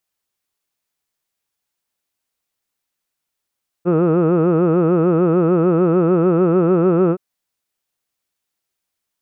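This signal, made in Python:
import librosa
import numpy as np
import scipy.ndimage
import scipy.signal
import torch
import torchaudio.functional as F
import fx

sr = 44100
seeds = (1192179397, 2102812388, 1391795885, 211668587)

y = fx.formant_vowel(sr, seeds[0], length_s=3.32, hz=167.0, glide_st=1.0, vibrato_hz=6.7, vibrato_st=1.25, f1_hz=420.0, f2_hz=1300.0, f3_hz=2600.0)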